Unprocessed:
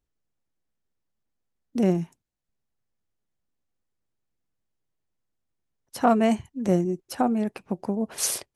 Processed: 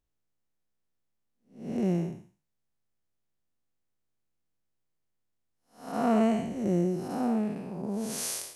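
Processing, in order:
spectrum smeared in time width 273 ms

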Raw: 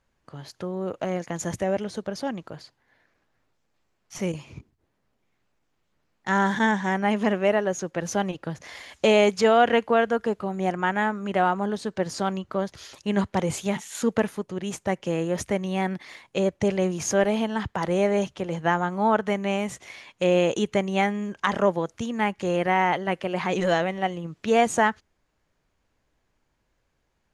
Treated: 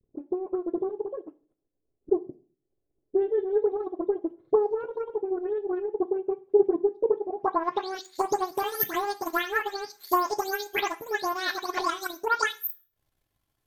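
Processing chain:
every frequency bin delayed by itself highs late, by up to 689 ms
high-shelf EQ 9,000 Hz +9 dB
transient designer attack +11 dB, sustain −12 dB
low-pass filter sweep 210 Hz → 6,500 Hz, 0:14.44–0:16.48
wrong playback speed 7.5 ips tape played at 15 ips
on a send: convolution reverb RT60 0.40 s, pre-delay 3 ms, DRR 9 dB
on the sum: level −6.5 dB

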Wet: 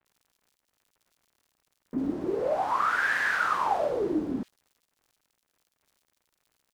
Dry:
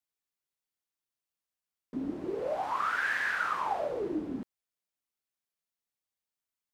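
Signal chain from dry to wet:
surface crackle 100 per second −56 dBFS
multiband delay without the direct sound lows, highs 50 ms, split 2,500 Hz
level +5.5 dB

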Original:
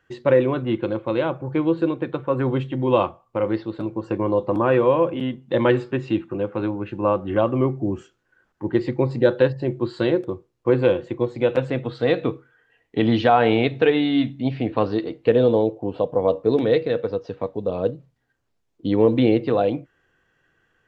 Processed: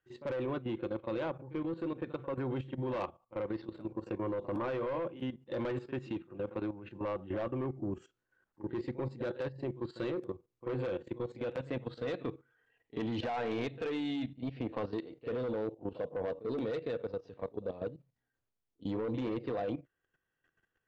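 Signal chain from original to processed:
echo ahead of the sound 41 ms −15.5 dB
soft clipping −15.5 dBFS, distortion −11 dB
output level in coarse steps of 13 dB
level −8.5 dB

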